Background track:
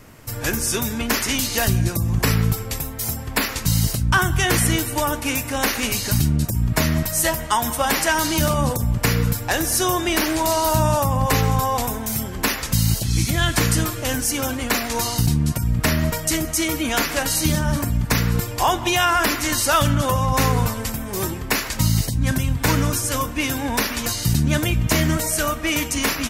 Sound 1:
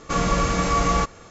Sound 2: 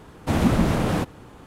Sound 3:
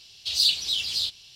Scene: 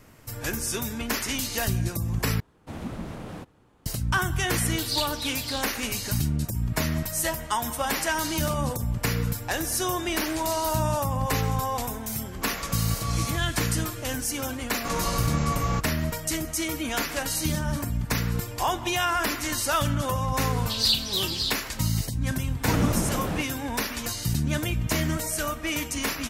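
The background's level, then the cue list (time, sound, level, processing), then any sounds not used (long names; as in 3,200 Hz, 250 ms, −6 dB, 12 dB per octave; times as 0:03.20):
background track −7 dB
0:02.40: overwrite with 2 −15.5 dB
0:04.52: mix in 3 −7.5 dB
0:12.32: mix in 1 −13 dB + low-shelf EQ 250 Hz −11 dB
0:14.75: mix in 1 −8 dB
0:20.44: mix in 3 −1.5 dB
0:22.38: mix in 2 −6.5 dB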